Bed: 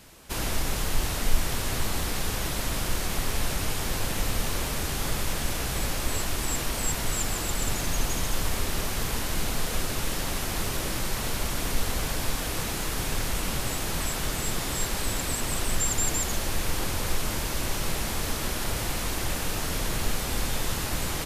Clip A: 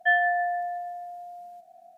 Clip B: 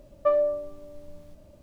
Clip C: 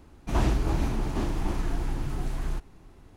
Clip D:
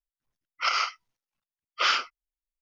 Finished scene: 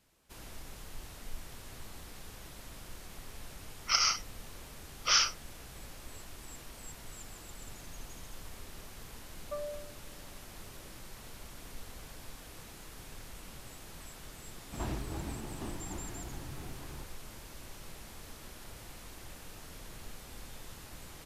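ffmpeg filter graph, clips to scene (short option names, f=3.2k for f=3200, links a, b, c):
-filter_complex "[0:a]volume=-19.5dB[a];[4:a]lowpass=f=5.9k:t=q:w=11[b];[3:a]highpass=57[c];[b]atrim=end=2.61,asetpts=PTS-STARTPTS,volume=-7.5dB,afade=t=in:d=0.004:c=hsin,afade=t=out:st=2.606:d=0.004:c=hsin,adelay=3270[d];[2:a]atrim=end=1.62,asetpts=PTS-STARTPTS,volume=-17.5dB,afade=t=in:d=0.004:c=hsin,afade=t=out:st=1.616:d=0.004:c=hsin,adelay=9260[e];[c]atrim=end=3.16,asetpts=PTS-STARTPTS,volume=-11dB,afade=t=in:d=0.004:c=hsin,afade=t=out:st=3.156:d=0.004:c=hsin,adelay=14450[f];[a][d][e][f]amix=inputs=4:normalize=0"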